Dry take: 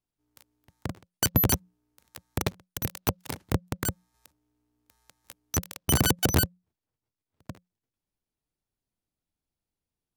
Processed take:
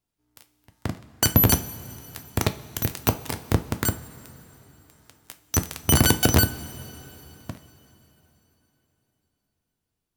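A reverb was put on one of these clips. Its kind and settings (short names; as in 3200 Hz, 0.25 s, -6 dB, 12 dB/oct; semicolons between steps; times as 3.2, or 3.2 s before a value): two-slope reverb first 0.29 s, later 3.8 s, from -18 dB, DRR 7.5 dB; gain +4.5 dB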